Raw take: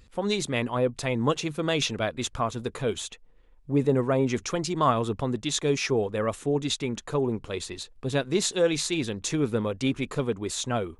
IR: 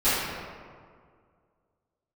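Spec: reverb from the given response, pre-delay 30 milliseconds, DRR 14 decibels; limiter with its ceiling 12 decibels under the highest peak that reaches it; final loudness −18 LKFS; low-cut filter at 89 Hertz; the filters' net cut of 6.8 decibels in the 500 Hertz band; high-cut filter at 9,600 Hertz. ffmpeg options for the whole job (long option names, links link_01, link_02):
-filter_complex "[0:a]highpass=89,lowpass=9600,equalizer=frequency=500:width_type=o:gain=-8.5,alimiter=level_in=1.5dB:limit=-24dB:level=0:latency=1,volume=-1.5dB,asplit=2[link_01][link_02];[1:a]atrim=start_sample=2205,adelay=30[link_03];[link_02][link_03]afir=irnorm=-1:irlink=0,volume=-30.5dB[link_04];[link_01][link_04]amix=inputs=2:normalize=0,volume=17dB"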